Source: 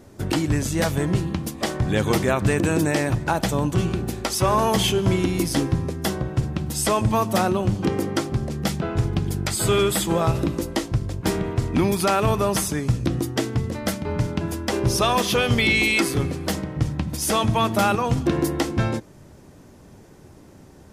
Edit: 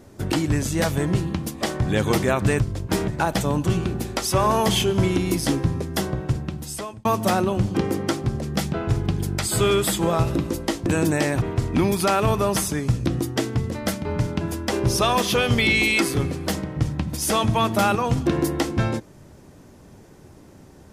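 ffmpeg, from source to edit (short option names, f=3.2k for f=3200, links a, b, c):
-filter_complex "[0:a]asplit=6[a][b][c][d][e][f];[a]atrim=end=2.602[g];[b]atrim=start=10.938:end=11.422[h];[c]atrim=start=3.158:end=7.13,asetpts=PTS-STARTPTS,afade=t=out:st=3.172:d=0.8[i];[d]atrim=start=7.13:end=10.942,asetpts=PTS-STARTPTS,afade=t=in:d=0.004:c=hsin[j];[e]atrim=start=2.598:end=3.162[k];[f]atrim=start=11.418[l];[g][h]acrossfade=d=0.004:c1=hsin:c2=hsin[m];[i][j]concat=n=2:v=0:a=1[n];[m][n]acrossfade=d=0.004:c1=hsin:c2=hsin[o];[o][k]acrossfade=d=0.004:c1=hsin:c2=hsin[p];[p][l]acrossfade=d=0.004:c1=hsin:c2=hsin"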